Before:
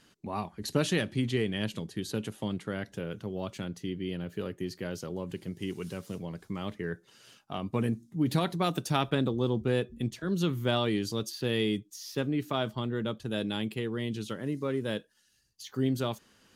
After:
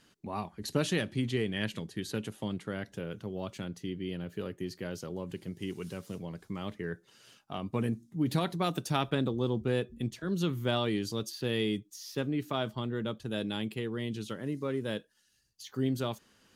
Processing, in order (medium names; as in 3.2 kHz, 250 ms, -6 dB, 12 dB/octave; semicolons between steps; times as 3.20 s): 1.56–2.20 s: dynamic bell 1.9 kHz, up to +7 dB, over -53 dBFS, Q 1.7; trim -2 dB